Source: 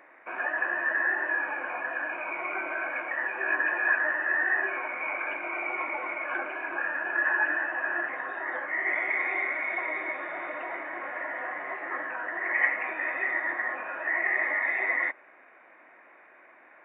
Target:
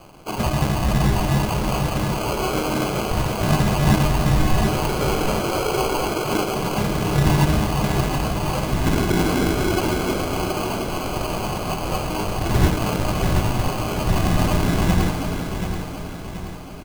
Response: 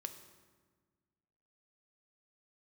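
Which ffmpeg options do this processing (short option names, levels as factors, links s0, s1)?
-filter_complex "[0:a]asplit=2[s0][s1];[s1]asplit=4[s2][s3][s4][s5];[s2]adelay=311,afreqshift=96,volume=0.282[s6];[s3]adelay=622,afreqshift=192,volume=0.105[s7];[s4]adelay=933,afreqshift=288,volume=0.0385[s8];[s5]adelay=1244,afreqshift=384,volume=0.0143[s9];[s6][s7][s8][s9]amix=inputs=4:normalize=0[s10];[s0][s10]amix=inputs=2:normalize=0,acrusher=samples=24:mix=1:aa=0.000001,asplit=2[s11][s12];[s12]aecho=0:1:730|1460|2190|2920|3650|4380:0.398|0.199|0.0995|0.0498|0.0249|0.0124[s13];[s11][s13]amix=inputs=2:normalize=0,volume=2.82"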